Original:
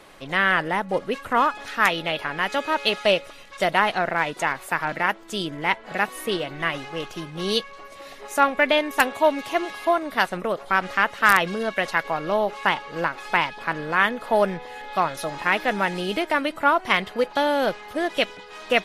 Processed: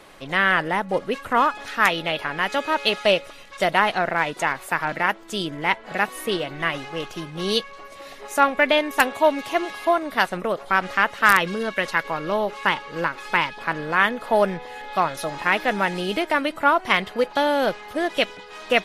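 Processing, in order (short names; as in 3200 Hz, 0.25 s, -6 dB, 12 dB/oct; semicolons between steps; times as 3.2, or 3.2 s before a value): 11.31–13.58 bell 720 Hz -10.5 dB 0.21 oct; gain +1 dB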